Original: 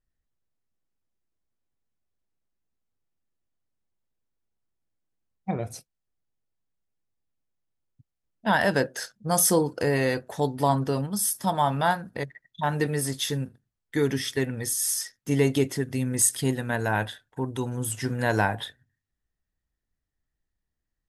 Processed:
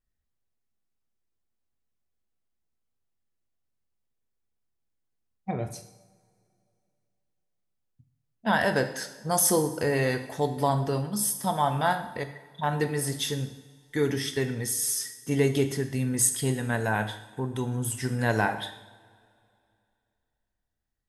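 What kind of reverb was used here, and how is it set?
two-slope reverb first 0.78 s, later 2.7 s, from -19 dB, DRR 7 dB; gain -2 dB

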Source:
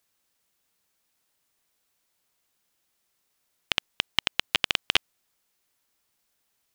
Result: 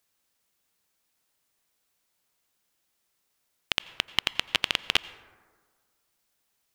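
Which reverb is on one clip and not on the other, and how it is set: plate-style reverb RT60 1.6 s, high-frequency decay 0.35×, pre-delay 75 ms, DRR 17 dB; gain -1 dB

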